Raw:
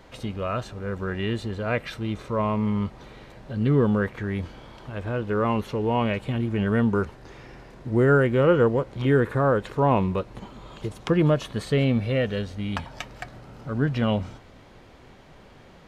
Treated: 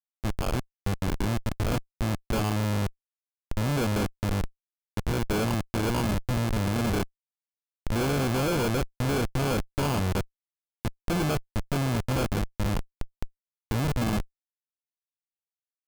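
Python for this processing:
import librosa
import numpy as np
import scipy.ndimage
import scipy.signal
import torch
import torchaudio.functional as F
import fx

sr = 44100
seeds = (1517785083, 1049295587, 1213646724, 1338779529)

y = fx.vibrato(x, sr, rate_hz=0.74, depth_cents=13.0)
y = fx.sample_hold(y, sr, seeds[0], rate_hz=1900.0, jitter_pct=0)
y = fx.schmitt(y, sr, flips_db=-25.5)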